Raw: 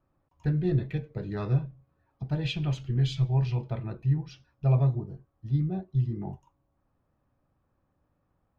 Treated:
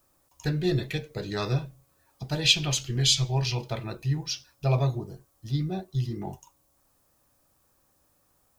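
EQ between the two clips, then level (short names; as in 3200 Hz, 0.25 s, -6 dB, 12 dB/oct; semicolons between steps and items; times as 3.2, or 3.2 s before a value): tone controls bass -15 dB, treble +13 dB; low shelf 180 Hz +11.5 dB; high shelf 2600 Hz +11 dB; +4.0 dB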